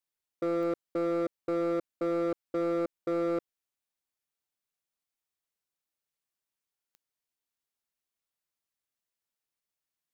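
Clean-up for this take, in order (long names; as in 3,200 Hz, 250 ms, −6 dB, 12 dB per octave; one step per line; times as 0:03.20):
clipped peaks rebuilt −26.5 dBFS
click removal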